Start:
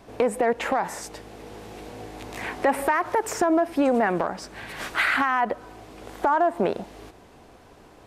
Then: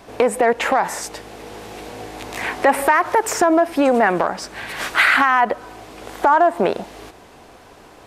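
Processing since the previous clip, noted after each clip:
low-shelf EQ 420 Hz −6.5 dB
level +8.5 dB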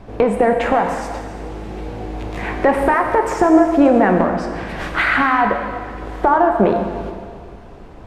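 RIAA equalisation playback
dense smooth reverb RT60 2 s, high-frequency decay 1×, DRR 3.5 dB
level −1.5 dB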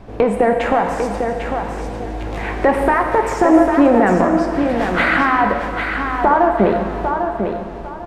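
repeating echo 799 ms, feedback 24%, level −6.5 dB

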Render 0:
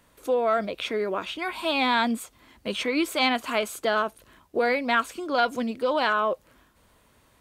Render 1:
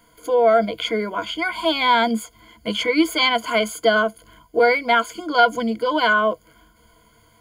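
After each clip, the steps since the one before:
EQ curve with evenly spaced ripples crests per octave 1.8, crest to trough 18 dB
level +1.5 dB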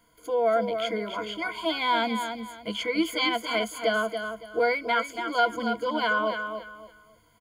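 repeating echo 281 ms, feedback 26%, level −7.5 dB
level −8 dB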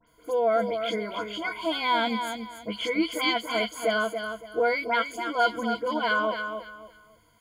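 all-pass dispersion highs, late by 73 ms, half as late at 2,800 Hz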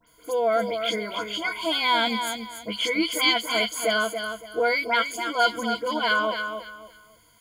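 high-shelf EQ 2,400 Hz +10 dB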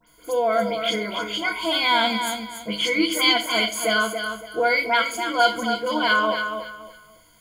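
rectangular room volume 630 cubic metres, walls furnished, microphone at 1 metre
level +2 dB

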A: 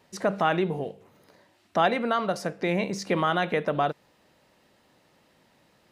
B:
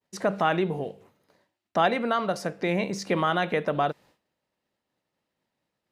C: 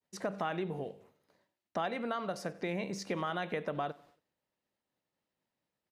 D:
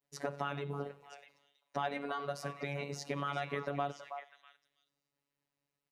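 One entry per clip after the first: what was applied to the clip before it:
downward expander −50 dBFS
downward compressor 3 to 1, threshold −25 dBFS, peak gain reduction 6.5 dB; repeating echo 93 ms, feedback 45%, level −22 dB; level −7 dB
phases set to zero 142 Hz; echo through a band-pass that steps 324 ms, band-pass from 900 Hz, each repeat 1.4 octaves, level −6.5 dB; level +1 dB

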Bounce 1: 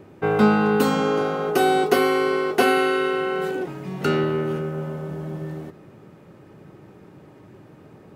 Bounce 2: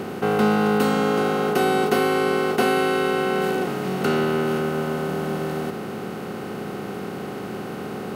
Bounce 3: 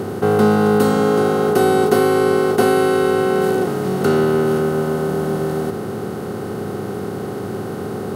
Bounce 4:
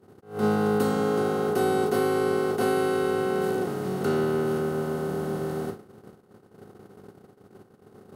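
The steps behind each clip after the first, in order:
compressor on every frequency bin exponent 0.4; level −5 dB
graphic EQ with 15 bands 100 Hz +11 dB, 400 Hz +4 dB, 2,500 Hz −8 dB, 10,000 Hz +4 dB; level +3 dB
noise gate −22 dBFS, range −28 dB; level that may rise only so fast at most 160 dB per second; level −9 dB

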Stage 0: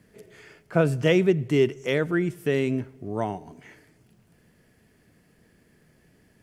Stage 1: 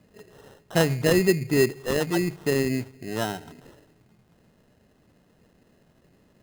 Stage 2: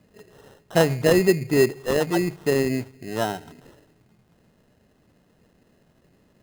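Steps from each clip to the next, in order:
mains-hum notches 50/100/150 Hz; sample-rate reduction 2,300 Hz, jitter 0%
dynamic equaliser 660 Hz, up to +5 dB, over −33 dBFS, Q 0.82

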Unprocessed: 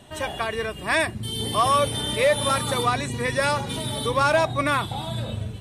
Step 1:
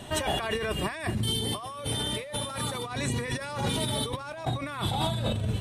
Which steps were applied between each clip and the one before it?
compressor whose output falls as the input rises −32 dBFS, ratio −1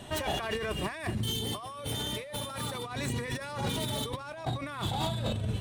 phase distortion by the signal itself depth 0.075 ms
level −3 dB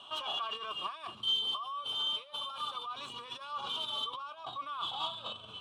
pair of resonant band-passes 1,900 Hz, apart 1.4 octaves
level +6.5 dB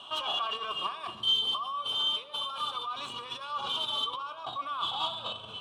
feedback echo with a low-pass in the loop 61 ms, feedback 80%, low-pass 2,700 Hz, level −14 dB
level +4.5 dB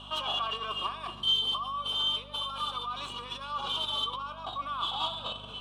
hum with harmonics 50 Hz, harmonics 5, −52 dBFS −3 dB per octave

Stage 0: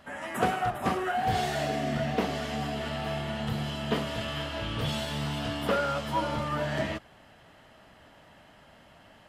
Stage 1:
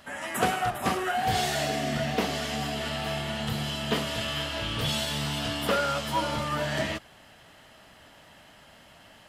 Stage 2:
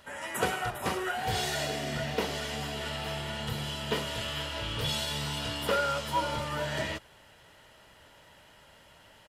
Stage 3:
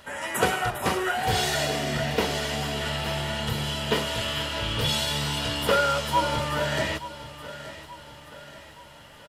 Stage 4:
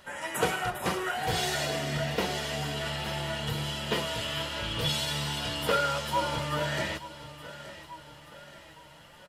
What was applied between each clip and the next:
high-shelf EQ 2,600 Hz +9.5 dB
comb filter 2.1 ms, depth 39%; level −3.5 dB
repeating echo 877 ms, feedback 49%, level −15 dB; level +6 dB
flanger 1.3 Hz, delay 5.4 ms, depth 1.2 ms, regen +50%

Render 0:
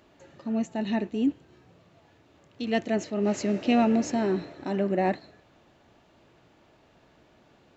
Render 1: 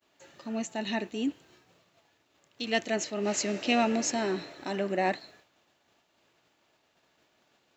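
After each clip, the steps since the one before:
downward expander −52 dBFS
spectral tilt +3 dB per octave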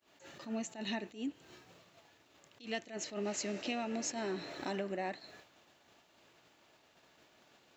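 downward compressor 8 to 1, threshold −38 dBFS, peak gain reduction 17.5 dB
level that may rise only so fast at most 170 dB per second
level +3.5 dB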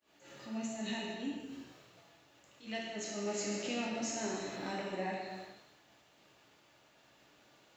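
reverb whose tail is shaped and stops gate 490 ms falling, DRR −4 dB
level −4.5 dB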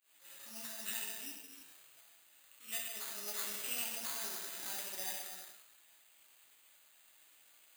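bad sample-rate conversion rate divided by 8×, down none, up hold
first-order pre-emphasis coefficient 0.97
level +7.5 dB

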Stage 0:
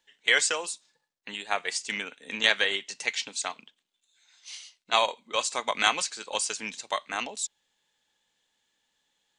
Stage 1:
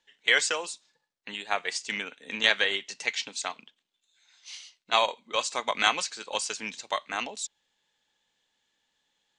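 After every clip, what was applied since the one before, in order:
low-pass filter 7,200 Hz 12 dB per octave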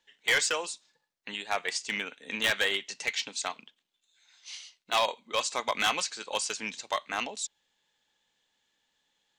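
hard clipping −19.5 dBFS, distortion −9 dB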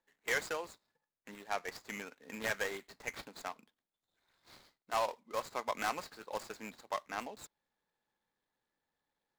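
running median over 15 samples
level −5.5 dB

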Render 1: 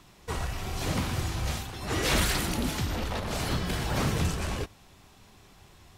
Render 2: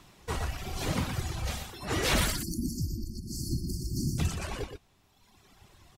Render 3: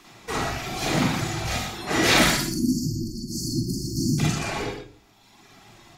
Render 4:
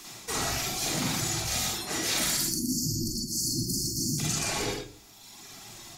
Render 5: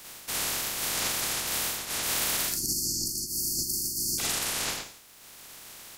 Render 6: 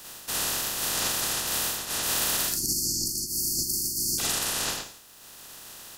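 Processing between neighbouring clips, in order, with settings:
reverb reduction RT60 1.7 s; time-frequency box erased 0:02.30–0:04.18, 380–4,300 Hz; single-tap delay 121 ms −7.5 dB
convolution reverb RT60 0.40 s, pre-delay 40 ms, DRR −3.5 dB; level +4 dB
bass and treble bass 0 dB, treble +14 dB; reversed playback; downward compressor 5 to 1, threshold −27 dBFS, peak gain reduction 15.5 dB; reversed playback
ceiling on every frequency bin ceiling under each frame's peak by 26 dB
notch filter 2,200 Hz, Q 6.3; level +2 dB

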